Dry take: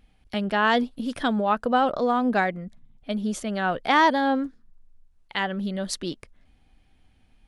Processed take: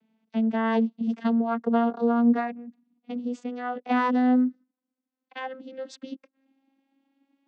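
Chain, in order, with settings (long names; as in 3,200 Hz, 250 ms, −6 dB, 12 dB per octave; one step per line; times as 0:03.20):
vocoder with a gliding carrier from A3, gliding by +4 semitones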